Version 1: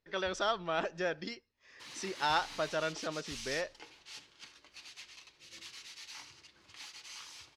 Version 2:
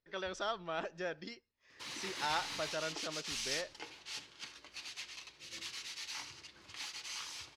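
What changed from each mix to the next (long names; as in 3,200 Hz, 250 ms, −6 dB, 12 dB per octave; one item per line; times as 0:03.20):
speech −5.5 dB
background +4.5 dB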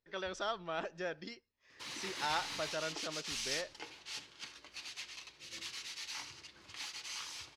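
nothing changed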